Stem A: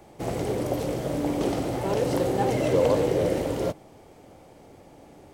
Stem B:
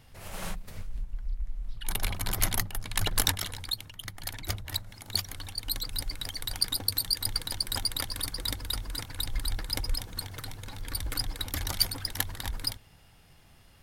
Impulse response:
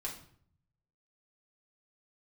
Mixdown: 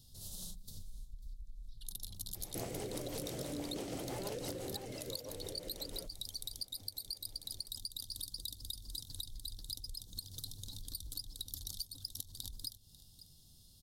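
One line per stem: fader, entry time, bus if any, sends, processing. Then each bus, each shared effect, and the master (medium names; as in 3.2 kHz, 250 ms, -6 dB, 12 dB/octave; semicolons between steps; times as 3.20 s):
4.44 s -3 dB -> 5.02 s -15 dB, 2.35 s, no send, no echo send, treble shelf 2.6 kHz +11 dB; compression 3:1, threshold -28 dBFS, peak gain reduction 9 dB; rotary cabinet horn 6 Hz
-5.5 dB, 0.00 s, no send, echo send -19.5 dB, compression 5:1, threshold -38 dBFS, peak gain reduction 17 dB; FFT filter 210 Hz 0 dB, 2.3 kHz -27 dB, 3.7 kHz +8 dB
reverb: none
echo: delay 544 ms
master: compression, threshold -38 dBFS, peak gain reduction 8.5 dB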